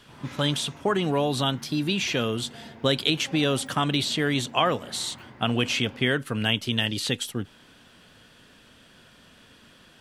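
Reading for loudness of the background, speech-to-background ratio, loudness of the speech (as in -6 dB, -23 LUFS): -45.5 LUFS, 20.0 dB, -25.5 LUFS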